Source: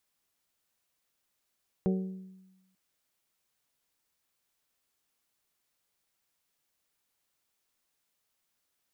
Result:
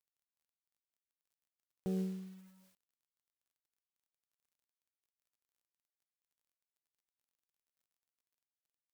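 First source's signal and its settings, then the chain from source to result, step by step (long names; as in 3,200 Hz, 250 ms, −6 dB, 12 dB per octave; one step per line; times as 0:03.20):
struck glass bell, lowest mode 188 Hz, decay 1.09 s, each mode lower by 5 dB, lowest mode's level −23.5 dB
brickwall limiter −29.5 dBFS
log-companded quantiser 6 bits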